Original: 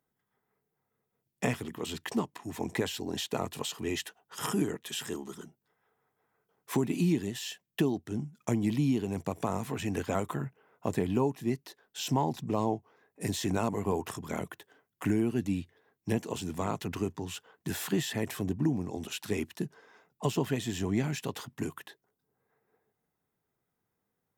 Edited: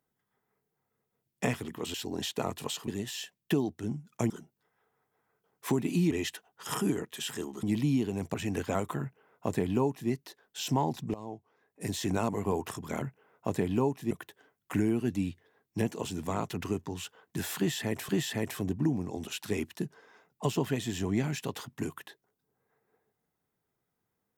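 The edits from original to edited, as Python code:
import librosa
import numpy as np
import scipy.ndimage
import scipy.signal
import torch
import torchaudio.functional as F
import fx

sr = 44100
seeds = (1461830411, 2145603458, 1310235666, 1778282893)

y = fx.edit(x, sr, fx.cut(start_s=1.94, length_s=0.95),
    fx.swap(start_s=3.83, length_s=1.52, other_s=7.16, other_length_s=1.42),
    fx.cut(start_s=9.29, length_s=0.45),
    fx.duplicate(start_s=10.41, length_s=1.09, to_s=14.42),
    fx.fade_in_from(start_s=12.54, length_s=0.96, floor_db=-17.5),
    fx.repeat(start_s=17.89, length_s=0.51, count=2), tone=tone)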